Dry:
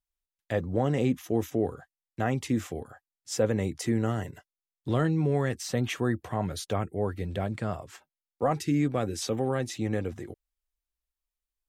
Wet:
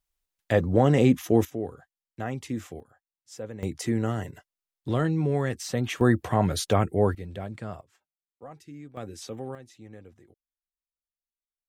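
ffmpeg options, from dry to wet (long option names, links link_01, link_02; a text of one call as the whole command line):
ffmpeg -i in.wav -af "asetnsamples=nb_out_samples=441:pad=0,asendcmd='1.45 volume volume -4.5dB;2.8 volume volume -12dB;3.63 volume volume 0.5dB;6.01 volume volume 7dB;7.15 volume volume -5dB;7.81 volume volume -18dB;8.97 volume volume -8dB;9.55 volume volume -17dB',volume=6.5dB" out.wav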